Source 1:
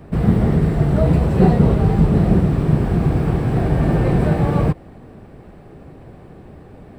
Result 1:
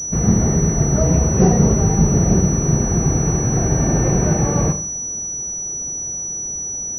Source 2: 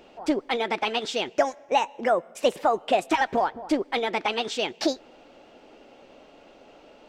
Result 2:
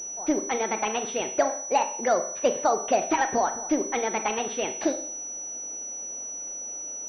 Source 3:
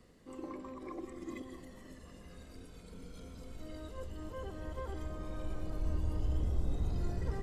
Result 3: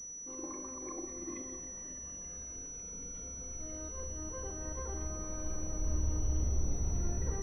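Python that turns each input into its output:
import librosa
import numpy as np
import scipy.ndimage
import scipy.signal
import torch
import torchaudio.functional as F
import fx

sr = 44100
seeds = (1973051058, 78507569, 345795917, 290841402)

y = fx.rev_schroeder(x, sr, rt60_s=0.55, comb_ms=29, drr_db=8.5)
y = fx.pwm(y, sr, carrier_hz=5900.0)
y = F.gain(torch.from_numpy(y), -1.0).numpy()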